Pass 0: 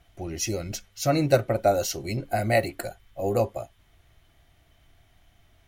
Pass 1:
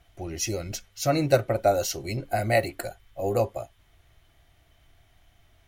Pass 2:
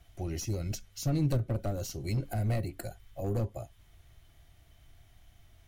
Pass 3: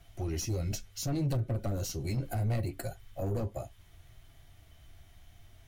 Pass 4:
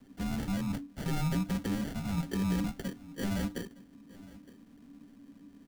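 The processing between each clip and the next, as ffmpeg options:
-af "equalizer=f=210:w=1.5:g=-3.5"
-filter_complex "[0:a]bass=f=250:g=6,treble=f=4k:g=5,aeval=exprs='clip(val(0),-1,0.0841)':c=same,acrossover=split=330[a][b];[b]acompressor=threshold=-35dB:ratio=10[c];[a][c]amix=inputs=2:normalize=0,volume=-3.5dB"
-filter_complex "[0:a]asplit=2[a][b];[b]alimiter=level_in=3dB:limit=-24dB:level=0:latency=1,volume=-3dB,volume=1dB[c];[a][c]amix=inputs=2:normalize=0,flanger=delay=7.4:depth=5.9:regen=-40:speed=0.7:shape=sinusoidal,asoftclip=type=tanh:threshold=-24.5dB"
-af "acrusher=samples=32:mix=1:aa=0.000001,afreqshift=-300,aecho=1:1:914:0.0944"

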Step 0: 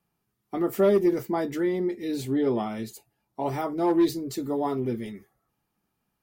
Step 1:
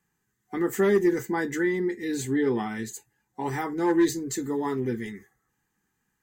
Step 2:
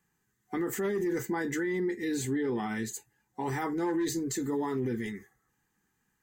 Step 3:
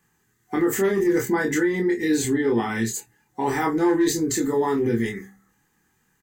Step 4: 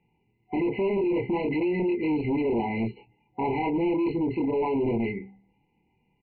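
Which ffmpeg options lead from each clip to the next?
-af "superequalizer=8b=0.251:11b=3.16:15b=3.16"
-af "alimiter=limit=-24dB:level=0:latency=1:release=31"
-filter_complex "[0:a]asplit=2[a][b];[b]adelay=26,volume=-3.5dB[c];[a][c]amix=inputs=2:normalize=0,bandreject=f=65.47:t=h:w=4,bandreject=f=130.94:t=h:w=4,bandreject=f=196.41:t=h:w=4,bandreject=f=261.88:t=h:w=4,bandreject=f=327.35:t=h:w=4,volume=8dB"
-af "aresample=8000,asoftclip=type=hard:threshold=-22.5dB,aresample=44100,afftfilt=real='re*eq(mod(floor(b*sr/1024/1000),2),0)':imag='im*eq(mod(floor(b*sr/1024/1000),2),0)':win_size=1024:overlap=0.75"

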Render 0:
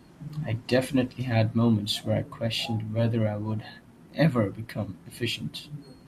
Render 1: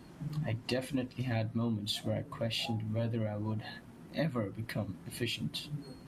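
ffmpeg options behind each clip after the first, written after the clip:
-af "acompressor=threshold=-32dB:ratio=4"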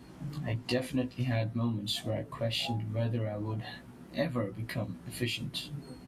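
-filter_complex "[0:a]asplit=2[a][b];[b]adelay=16,volume=-2.5dB[c];[a][c]amix=inputs=2:normalize=0"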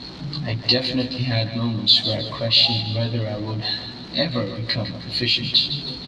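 -filter_complex "[0:a]aeval=exprs='val(0)+0.5*0.00501*sgn(val(0))':c=same,lowpass=f=4.2k:t=q:w=8.5,asplit=2[a][b];[b]aecho=0:1:156|312|468|624|780:0.282|0.127|0.0571|0.0257|0.0116[c];[a][c]amix=inputs=2:normalize=0,volume=7dB"

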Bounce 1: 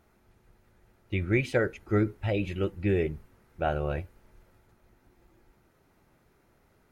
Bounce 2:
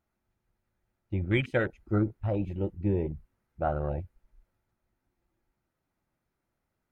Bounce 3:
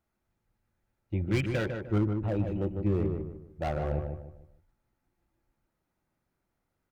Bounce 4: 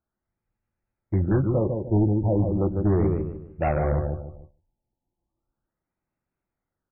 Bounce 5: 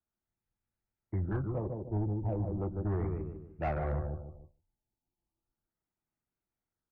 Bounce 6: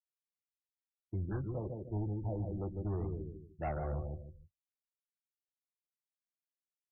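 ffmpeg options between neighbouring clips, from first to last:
-af "equalizer=f=420:t=o:w=0.31:g=-6.5,afwtdn=0.02"
-filter_complex "[0:a]acrossover=split=260[a][b];[b]asoftclip=type=hard:threshold=-29dB[c];[a][c]amix=inputs=2:normalize=0,asplit=2[d][e];[e]adelay=151,lowpass=f=1.7k:p=1,volume=-5dB,asplit=2[f][g];[g]adelay=151,lowpass=f=1.7k:p=1,volume=0.35,asplit=2[h][i];[i]adelay=151,lowpass=f=1.7k:p=1,volume=0.35,asplit=2[j][k];[k]adelay=151,lowpass=f=1.7k:p=1,volume=0.35[l];[d][f][h][j][l]amix=inputs=5:normalize=0"
-af "agate=range=-13dB:threshold=-54dB:ratio=16:detection=peak,asoftclip=type=hard:threshold=-23dB,afftfilt=real='re*lt(b*sr/1024,940*pow(2900/940,0.5+0.5*sin(2*PI*0.36*pts/sr)))':imag='im*lt(b*sr/1024,940*pow(2900/940,0.5+0.5*sin(2*PI*0.36*pts/sr)))':win_size=1024:overlap=0.75,volume=8dB"
-filter_complex "[0:a]bandreject=f=550:w=12,acrossover=split=120|560|640[a][b][c][d];[b]alimiter=limit=-24dB:level=0:latency=1:release=356[e];[a][e][c][d]amix=inputs=4:normalize=0,aeval=exprs='0.211*(cos(1*acos(clip(val(0)/0.211,-1,1)))-cos(1*PI/2))+0.00422*(cos(8*acos(clip(val(0)/0.211,-1,1)))-cos(8*PI/2))':c=same,volume=-8dB"
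-af "afftdn=nr=34:nf=-44,volume=-4dB"

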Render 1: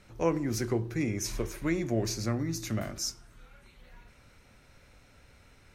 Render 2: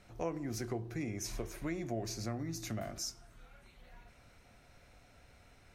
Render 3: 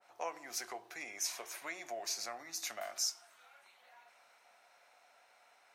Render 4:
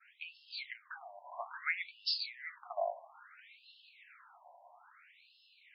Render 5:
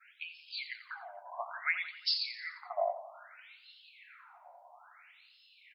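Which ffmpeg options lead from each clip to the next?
-af "equalizer=f=700:t=o:w=0.22:g=9.5,acompressor=threshold=-35dB:ratio=2,volume=-3.5dB"
-af "highpass=f=800:t=q:w=1.9,adynamicequalizer=threshold=0.00126:dfrequency=1600:dqfactor=0.7:tfrequency=1600:tqfactor=0.7:attack=5:release=100:ratio=0.375:range=4:mode=boostabove:tftype=highshelf,volume=-2.5dB"
-af "afftfilt=real='re*between(b*sr/1024,730*pow(3800/730,0.5+0.5*sin(2*PI*0.6*pts/sr))/1.41,730*pow(3800/730,0.5+0.5*sin(2*PI*0.6*pts/sr))*1.41)':imag='im*between(b*sr/1024,730*pow(3800/730,0.5+0.5*sin(2*PI*0.6*pts/sr))/1.41,730*pow(3800/730,0.5+0.5*sin(2*PI*0.6*pts/sr))*1.41)':win_size=1024:overlap=0.75,volume=9.5dB"
-af "aecho=1:1:87|174|261|348|435:0.251|0.126|0.0628|0.0314|0.0157,volume=3dB"

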